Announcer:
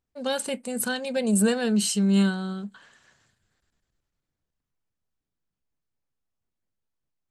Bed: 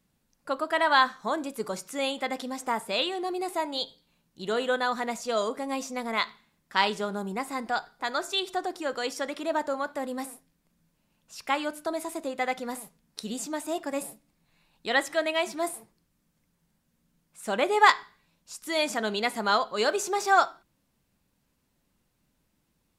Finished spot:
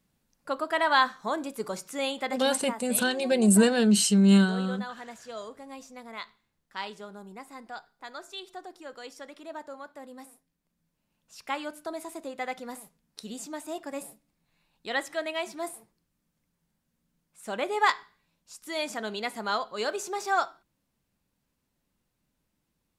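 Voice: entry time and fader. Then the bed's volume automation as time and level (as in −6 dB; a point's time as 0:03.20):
2.15 s, +2.0 dB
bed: 0:02.52 −1 dB
0:02.81 −12 dB
0:10.18 −12 dB
0:11.27 −5 dB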